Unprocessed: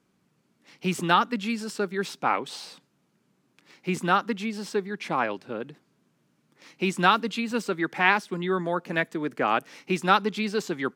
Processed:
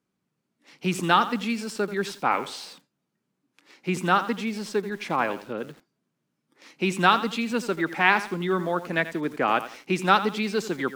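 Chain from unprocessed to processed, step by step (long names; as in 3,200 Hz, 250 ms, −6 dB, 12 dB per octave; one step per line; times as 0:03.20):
noise reduction from a noise print of the clip's start 11 dB
feedback echo at a low word length 86 ms, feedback 35%, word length 7 bits, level −13 dB
level +1 dB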